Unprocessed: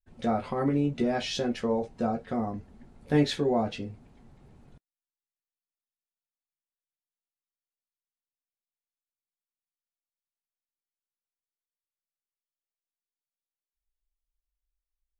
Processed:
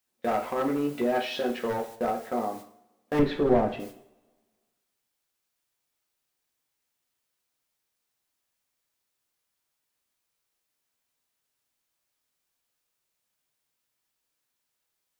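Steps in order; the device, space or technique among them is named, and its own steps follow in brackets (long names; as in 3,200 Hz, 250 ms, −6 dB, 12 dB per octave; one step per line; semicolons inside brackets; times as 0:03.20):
aircraft radio (band-pass filter 350–2,600 Hz; hard clipping −25.5 dBFS, distortion −13 dB; white noise bed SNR 18 dB; noise gate −45 dBFS, range −28 dB)
0:03.19–0:03.80: RIAA equalisation playback
coupled-rooms reverb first 0.57 s, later 1.5 s, from −20 dB, DRR 5.5 dB
level +3.5 dB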